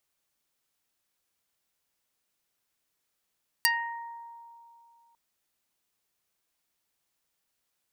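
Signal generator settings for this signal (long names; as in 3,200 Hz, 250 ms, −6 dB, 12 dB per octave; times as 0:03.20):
Karplus-Strong string A#5, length 1.50 s, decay 2.72 s, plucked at 0.25, dark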